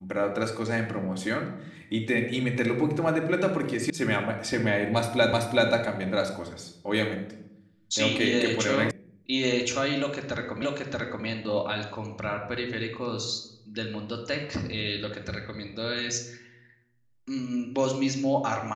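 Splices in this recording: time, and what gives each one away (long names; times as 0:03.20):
0:03.90: cut off before it has died away
0:05.33: the same again, the last 0.38 s
0:08.91: cut off before it has died away
0:10.62: the same again, the last 0.63 s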